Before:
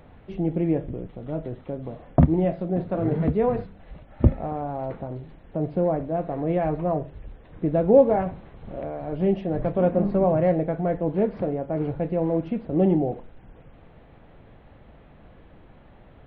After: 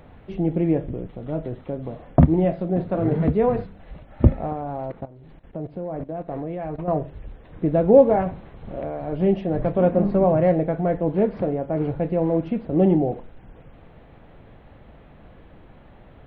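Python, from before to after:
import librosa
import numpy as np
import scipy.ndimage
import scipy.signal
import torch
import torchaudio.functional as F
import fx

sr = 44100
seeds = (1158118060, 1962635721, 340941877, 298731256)

y = fx.level_steps(x, sr, step_db=16, at=(4.53, 6.88))
y = y * librosa.db_to_amplitude(2.5)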